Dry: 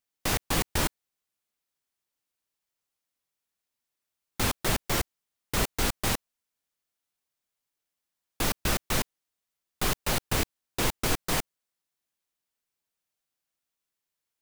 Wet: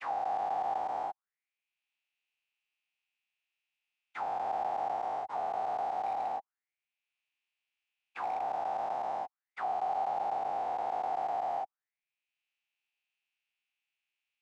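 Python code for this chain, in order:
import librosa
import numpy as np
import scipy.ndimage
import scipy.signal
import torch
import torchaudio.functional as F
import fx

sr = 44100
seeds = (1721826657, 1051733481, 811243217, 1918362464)

y = fx.spec_dilate(x, sr, span_ms=480)
y = scipy.signal.sosfilt(scipy.signal.butter(2, 73.0, 'highpass', fs=sr, output='sos'), y)
y = fx.peak_eq(y, sr, hz=790.0, db=9.5, octaves=0.44)
y = fx.auto_wah(y, sr, base_hz=750.0, top_hz=2600.0, q=6.5, full_db=-19.0, direction='down')
y = scipy.signal.savgol_filter(y, 9, 4, mode='constant')
y = fx.clip_hard(y, sr, threshold_db=-24.0, at=(6.06, 8.41))
y = fx.band_squash(y, sr, depth_pct=40)
y = F.gain(torch.from_numpy(y), -5.0).numpy()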